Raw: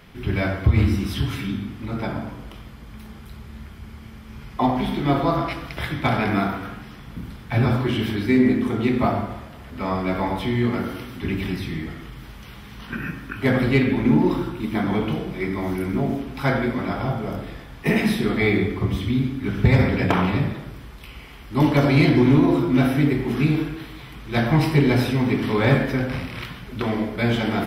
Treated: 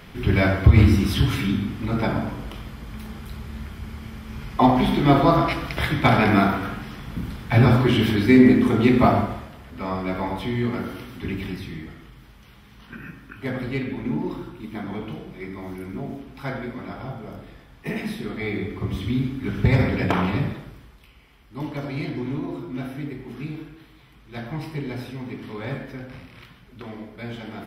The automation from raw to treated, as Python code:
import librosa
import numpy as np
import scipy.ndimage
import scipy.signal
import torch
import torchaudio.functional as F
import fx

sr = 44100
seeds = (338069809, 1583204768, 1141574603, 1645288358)

y = fx.gain(x, sr, db=fx.line((9.2, 4.0), (9.64, -3.0), (11.25, -3.0), (12.28, -9.0), (18.43, -9.0), (19.1, -2.0), (20.51, -2.0), (21.15, -13.0)))